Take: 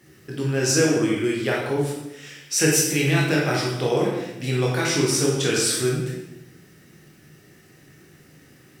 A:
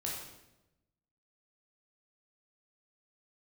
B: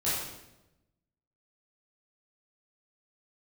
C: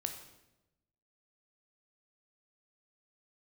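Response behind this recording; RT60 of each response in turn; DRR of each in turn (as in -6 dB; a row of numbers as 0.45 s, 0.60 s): A; 0.95 s, 0.95 s, 0.95 s; -4.0 dB, -11.0 dB, 5.0 dB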